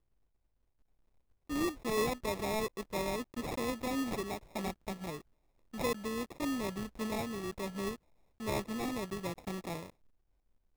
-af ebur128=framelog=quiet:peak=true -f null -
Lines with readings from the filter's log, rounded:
Integrated loudness:
  I:         -37.2 LUFS
  Threshold: -47.4 LUFS
Loudness range:
  LRA:         3.2 LU
  Threshold: -57.7 LUFS
  LRA low:   -38.9 LUFS
  LRA high:  -35.7 LUFS
True peak:
  Peak:      -22.6 dBFS